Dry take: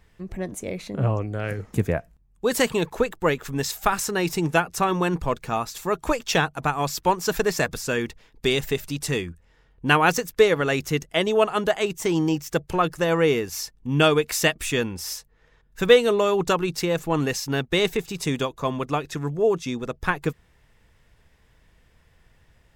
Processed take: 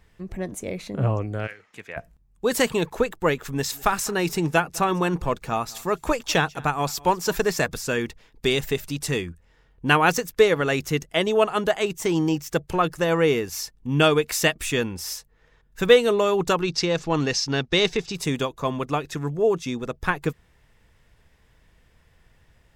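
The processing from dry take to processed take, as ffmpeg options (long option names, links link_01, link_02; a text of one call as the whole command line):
ffmpeg -i in.wav -filter_complex "[0:a]asplit=3[link_01][link_02][link_03];[link_01]afade=type=out:start_time=1.46:duration=0.02[link_04];[link_02]bandpass=frequency=2500:width_type=q:width=1.2,afade=type=in:start_time=1.46:duration=0.02,afade=type=out:start_time=1.96:duration=0.02[link_05];[link_03]afade=type=in:start_time=1.96:duration=0.02[link_06];[link_04][link_05][link_06]amix=inputs=3:normalize=0,asettb=1/sr,asplit=3[link_07][link_08][link_09];[link_07]atrim=end=3.514[link_10];[link_08]atrim=start=3.51:end=7.56,asetpts=PTS-STARTPTS,afade=type=in:duration=0.004:curve=qsin,afade=type=out:start_time=4.046:duration=0.004:curve=qsin,aecho=1:1:203:0.0668,atrim=end_sample=178605[link_11];[link_09]atrim=start=7.556[link_12];[link_10][link_11]acrossfade=duration=0.004:curve1=hsin:curve2=qsin[link_13];[link_13][link_12]acrossfade=duration=0.004:curve1=qsin:curve2=hsin,asettb=1/sr,asplit=3[link_14][link_15][link_16];[link_14]atrim=end=16.624[link_17];[link_15]atrim=start=16.62:end=18.15,asetpts=PTS-STARTPTS,afade=type=in:duration=0.004:curve=qsin,afade=type=out:start_time=1.526:duration=0.004:curve=qsin,lowpass=frequency=5300:width_type=q:width=2.4[link_18];[link_16]atrim=start=18.146[link_19];[link_17][link_18]acrossfade=duration=0.004:curve1=hsin:curve2=qsin[link_20];[link_20][link_19]acrossfade=duration=0.004:curve1=qsin:curve2=hsin" out.wav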